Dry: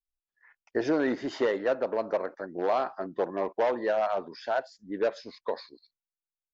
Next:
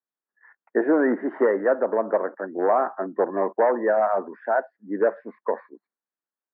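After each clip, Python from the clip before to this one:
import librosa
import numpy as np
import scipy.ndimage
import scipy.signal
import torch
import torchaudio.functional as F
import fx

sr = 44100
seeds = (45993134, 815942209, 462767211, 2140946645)

y = scipy.signal.sosfilt(scipy.signal.cheby1(4, 1.0, [200.0, 1800.0], 'bandpass', fs=sr, output='sos'), x)
y = F.gain(torch.from_numpy(y), 7.0).numpy()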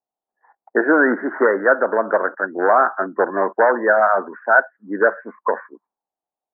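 y = fx.envelope_lowpass(x, sr, base_hz=750.0, top_hz=1500.0, q=5.8, full_db=-26.5, direction='up')
y = F.gain(torch.from_numpy(y), 2.5).numpy()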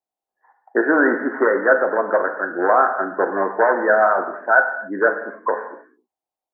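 y = fx.rev_gated(x, sr, seeds[0], gate_ms=310, shape='falling', drr_db=4.5)
y = F.gain(torch.from_numpy(y), -2.0).numpy()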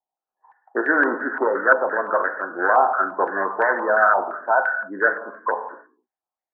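y = fx.filter_held_lowpass(x, sr, hz=5.8, low_hz=890.0, high_hz=1900.0)
y = F.gain(torch.from_numpy(y), -6.5).numpy()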